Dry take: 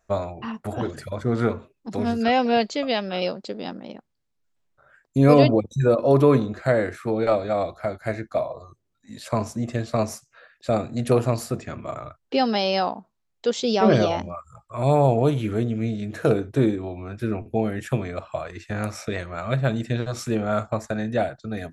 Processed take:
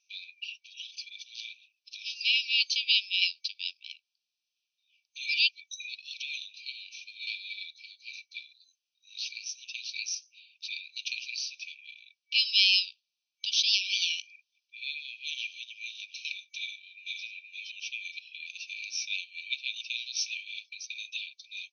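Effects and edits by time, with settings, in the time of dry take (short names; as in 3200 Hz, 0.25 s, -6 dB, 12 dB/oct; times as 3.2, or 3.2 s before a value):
16.59–17.24 echo throw 0.47 s, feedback 30%, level -1 dB
whole clip: FFT band-pass 2300–6300 Hz; gain +7.5 dB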